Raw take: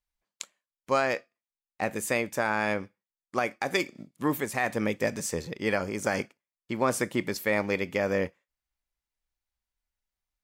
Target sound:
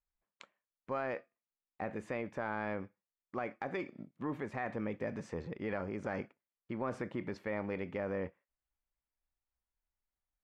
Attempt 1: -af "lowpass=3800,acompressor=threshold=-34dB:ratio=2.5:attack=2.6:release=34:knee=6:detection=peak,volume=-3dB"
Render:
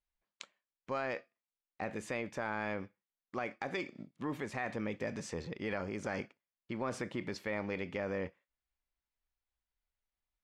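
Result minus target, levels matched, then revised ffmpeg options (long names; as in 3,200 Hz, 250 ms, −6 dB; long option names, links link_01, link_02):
4,000 Hz band +8.5 dB
-af "lowpass=1800,acompressor=threshold=-34dB:ratio=2.5:attack=2.6:release=34:knee=6:detection=peak,volume=-3dB"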